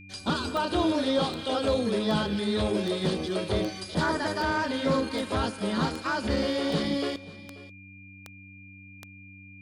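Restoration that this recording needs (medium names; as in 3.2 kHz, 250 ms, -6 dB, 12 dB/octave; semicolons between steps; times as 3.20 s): de-click; de-hum 96.7 Hz, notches 3; band-stop 2.4 kHz, Q 30; inverse comb 536 ms -19 dB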